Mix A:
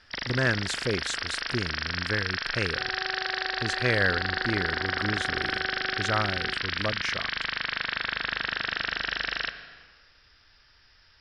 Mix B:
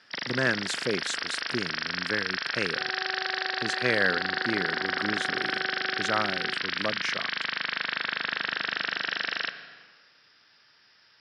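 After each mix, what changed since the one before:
master: add high-pass filter 150 Hz 24 dB per octave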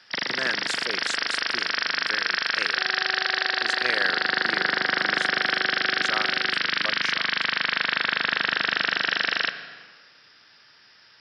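speech: add high-pass filter 880 Hz 6 dB per octave
first sound +6.0 dB

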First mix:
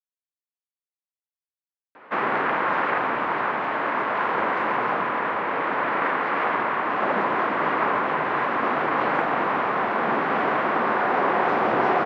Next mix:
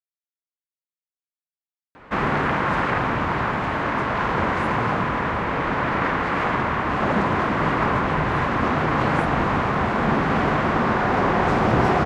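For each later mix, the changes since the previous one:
master: remove band-pass filter 360–2,900 Hz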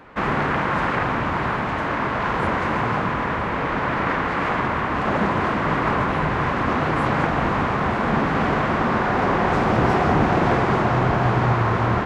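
speech: entry −2.20 s
background: entry −1.95 s

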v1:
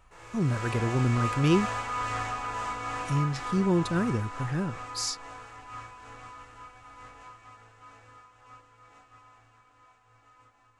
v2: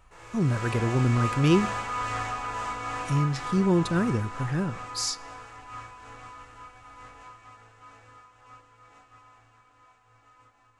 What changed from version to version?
reverb: on, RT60 1.1 s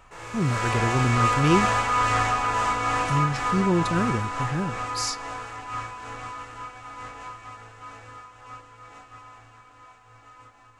background +8.5 dB

